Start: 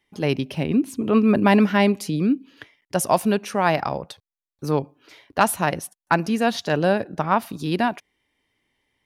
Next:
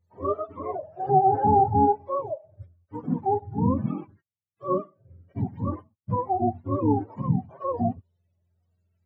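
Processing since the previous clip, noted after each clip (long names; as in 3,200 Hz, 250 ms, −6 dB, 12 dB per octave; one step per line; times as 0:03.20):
frequency axis turned over on the octave scale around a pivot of 410 Hz
harmonic and percussive parts rebalanced percussive −16 dB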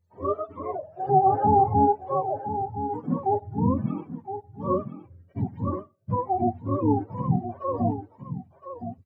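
single-tap delay 1,017 ms −10 dB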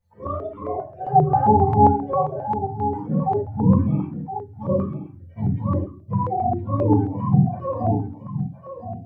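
rectangular room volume 180 cubic metres, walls furnished, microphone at 4.7 metres
notch on a step sequencer 7.5 Hz 330–1,500 Hz
level −4.5 dB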